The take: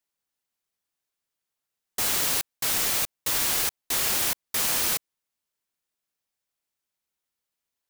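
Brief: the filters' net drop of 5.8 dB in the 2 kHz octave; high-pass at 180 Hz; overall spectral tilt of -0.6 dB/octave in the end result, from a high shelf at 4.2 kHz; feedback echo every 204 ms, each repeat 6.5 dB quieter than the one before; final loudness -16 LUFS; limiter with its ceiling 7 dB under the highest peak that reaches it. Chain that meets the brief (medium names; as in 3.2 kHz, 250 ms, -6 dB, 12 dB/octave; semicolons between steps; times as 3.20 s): high-pass 180 Hz; peaking EQ 2 kHz -5.5 dB; treble shelf 4.2 kHz -8 dB; peak limiter -25.5 dBFS; feedback delay 204 ms, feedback 47%, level -6.5 dB; trim +17.5 dB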